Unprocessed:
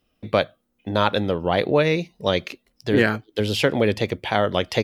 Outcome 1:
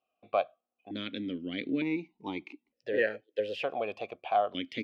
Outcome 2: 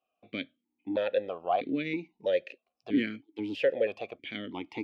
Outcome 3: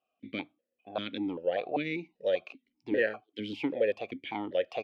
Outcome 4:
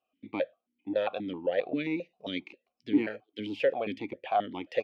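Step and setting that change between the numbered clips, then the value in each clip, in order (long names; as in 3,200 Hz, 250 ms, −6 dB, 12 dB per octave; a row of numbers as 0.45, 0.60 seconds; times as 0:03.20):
formant filter that steps through the vowels, speed: 1.1, 3.1, 5.1, 7.5 Hertz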